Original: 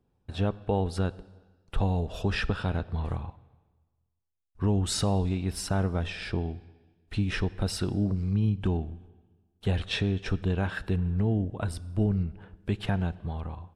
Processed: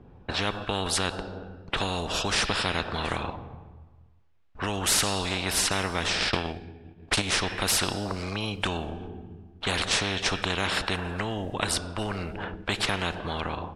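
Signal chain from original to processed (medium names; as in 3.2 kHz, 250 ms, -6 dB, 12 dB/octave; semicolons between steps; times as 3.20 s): 6.18–7.22 s: transient shaper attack +11 dB, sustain -9 dB; level-controlled noise filter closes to 2.4 kHz, open at -24.5 dBFS; spectrum-flattening compressor 4:1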